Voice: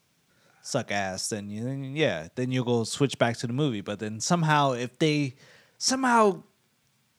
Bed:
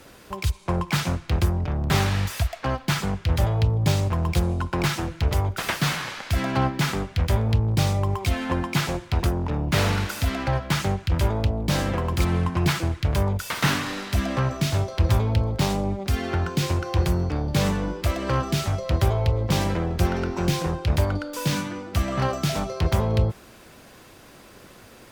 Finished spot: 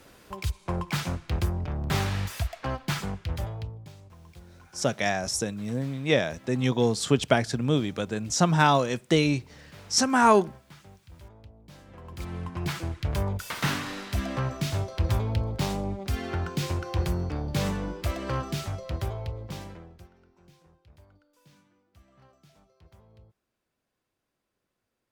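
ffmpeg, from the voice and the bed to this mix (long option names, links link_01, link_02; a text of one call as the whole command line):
ffmpeg -i stem1.wav -i stem2.wav -filter_complex "[0:a]adelay=4100,volume=2dB[link_01];[1:a]volume=16dB,afade=type=out:start_time=2.96:duration=0.93:silence=0.0841395,afade=type=in:start_time=11.87:duration=1.27:silence=0.0841395,afade=type=out:start_time=18.17:duration=1.92:silence=0.0354813[link_02];[link_01][link_02]amix=inputs=2:normalize=0" out.wav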